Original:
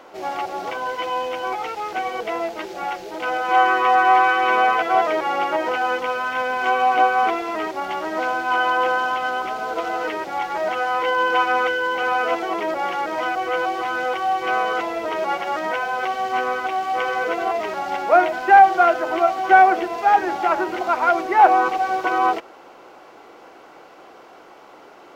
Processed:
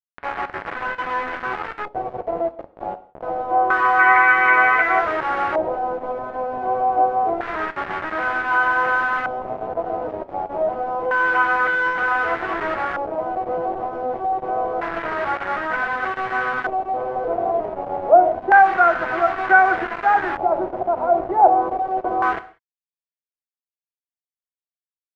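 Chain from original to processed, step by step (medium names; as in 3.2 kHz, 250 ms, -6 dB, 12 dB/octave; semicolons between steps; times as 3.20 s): 3.99–4.99 s: peaking EQ 2.1 kHz +15 dB 0.51 oct; bit crusher 4-bit; gated-style reverb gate 210 ms falling, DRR 11.5 dB; LFO low-pass square 0.27 Hz 660–1600 Hz; trim -4 dB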